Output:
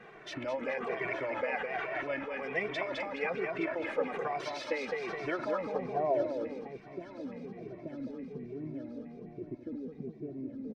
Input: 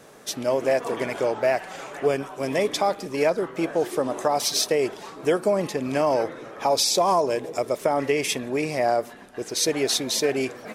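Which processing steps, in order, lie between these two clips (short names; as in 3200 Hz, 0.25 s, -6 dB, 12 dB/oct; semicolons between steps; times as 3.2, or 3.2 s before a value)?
1.66–2.42 steep low-pass 6200 Hz; feedback echo 0.21 s, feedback 48%, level -5 dB; in parallel at -2.5 dB: negative-ratio compressor -33 dBFS, ratio -1; on the sum: low-pass sweep 2200 Hz -> 240 Hz, 5.18–6.8; on a send: thin delay 0.868 s, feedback 61%, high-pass 1500 Hz, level -13.5 dB; on the sum: harmonic-percussive split harmonic -10 dB; endless flanger 2.1 ms -1.2 Hz; gain -7 dB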